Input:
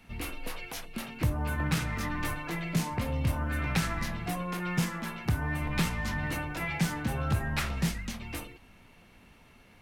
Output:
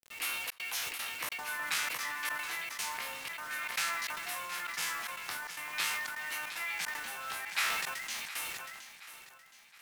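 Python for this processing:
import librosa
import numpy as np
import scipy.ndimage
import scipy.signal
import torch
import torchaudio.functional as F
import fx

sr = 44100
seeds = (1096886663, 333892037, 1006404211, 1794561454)

y = fx.spec_trails(x, sr, decay_s=0.33)
y = scipy.signal.sosfilt(scipy.signal.butter(2, 1300.0, 'highpass', fs=sr, output='sos'), y)
y = fx.rider(y, sr, range_db=10, speed_s=2.0)
y = fx.quant_dither(y, sr, seeds[0], bits=8, dither='none')
y = fx.step_gate(y, sr, bpm=151, pattern='xxxxx.xxx.xxx.', floor_db=-60.0, edge_ms=4.5)
y = fx.vibrato(y, sr, rate_hz=0.36, depth_cents=23.0)
y = fx.echo_feedback(y, sr, ms=719, feedback_pct=45, wet_db=-13.5)
y = fx.sustainer(y, sr, db_per_s=29.0)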